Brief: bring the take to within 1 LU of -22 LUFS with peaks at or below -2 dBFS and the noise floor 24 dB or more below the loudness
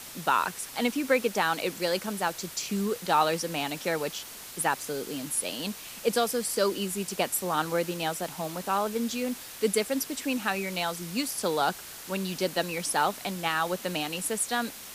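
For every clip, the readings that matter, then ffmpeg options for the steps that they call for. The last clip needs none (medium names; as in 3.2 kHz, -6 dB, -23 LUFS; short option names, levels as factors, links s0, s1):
noise floor -43 dBFS; noise floor target -53 dBFS; loudness -29.0 LUFS; peak level -10.5 dBFS; loudness target -22.0 LUFS
-> -af "afftdn=nr=10:nf=-43"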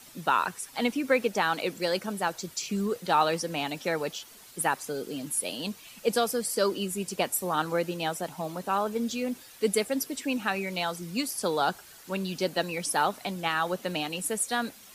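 noise floor -51 dBFS; noise floor target -54 dBFS
-> -af "afftdn=nr=6:nf=-51"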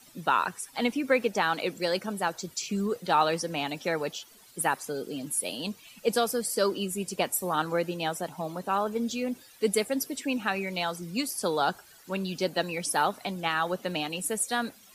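noise floor -55 dBFS; loudness -29.5 LUFS; peak level -11.0 dBFS; loudness target -22.0 LUFS
-> -af "volume=2.37"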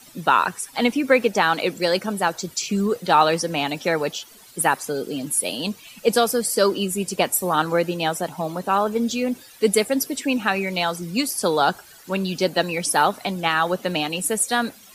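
loudness -22.0 LUFS; peak level -3.5 dBFS; noise floor -47 dBFS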